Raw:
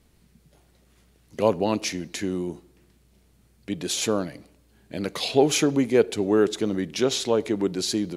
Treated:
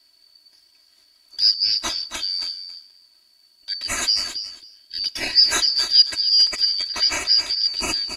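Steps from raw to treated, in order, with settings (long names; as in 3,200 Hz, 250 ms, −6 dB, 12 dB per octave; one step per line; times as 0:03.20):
band-splitting scrambler in four parts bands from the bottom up 4321
comb filter 3.1 ms, depth 88%
on a send: repeating echo 273 ms, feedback 15%, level −10 dB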